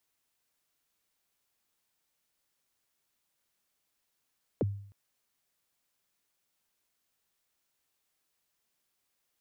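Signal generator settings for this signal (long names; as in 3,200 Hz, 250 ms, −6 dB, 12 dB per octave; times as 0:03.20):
synth kick length 0.31 s, from 600 Hz, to 100 Hz, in 27 ms, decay 0.60 s, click off, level −23 dB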